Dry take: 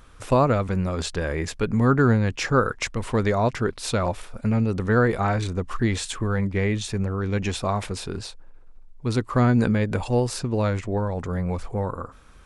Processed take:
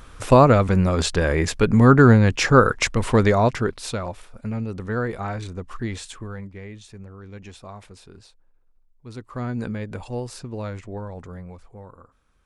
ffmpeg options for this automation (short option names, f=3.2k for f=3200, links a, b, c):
-af "volume=13dB,afade=t=out:st=3.12:d=0.92:silence=0.251189,afade=t=out:st=5.95:d=0.64:silence=0.354813,afade=t=in:st=9.06:d=0.61:silence=0.446684,afade=t=out:st=11.17:d=0.42:silence=0.421697"